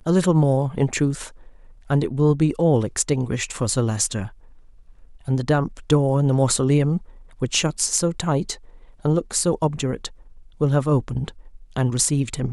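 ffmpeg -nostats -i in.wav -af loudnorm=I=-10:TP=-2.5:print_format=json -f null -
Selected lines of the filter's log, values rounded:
"input_i" : "-21.7",
"input_tp" : "-3.9",
"input_lra" : "2.7",
"input_thresh" : "-32.5",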